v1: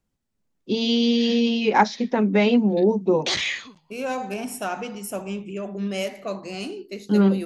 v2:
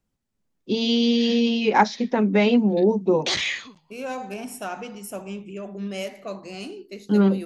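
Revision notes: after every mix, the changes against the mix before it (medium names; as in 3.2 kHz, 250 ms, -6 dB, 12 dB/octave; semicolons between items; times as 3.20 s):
second voice -3.5 dB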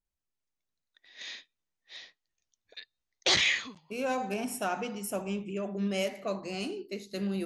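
first voice: muted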